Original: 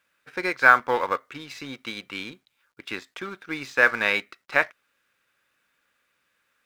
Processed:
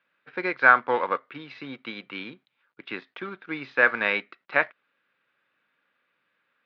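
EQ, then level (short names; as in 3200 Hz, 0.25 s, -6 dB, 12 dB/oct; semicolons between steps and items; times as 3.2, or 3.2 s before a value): HPF 130 Hz 24 dB/oct; LPF 4200 Hz 24 dB/oct; air absorption 160 m; 0.0 dB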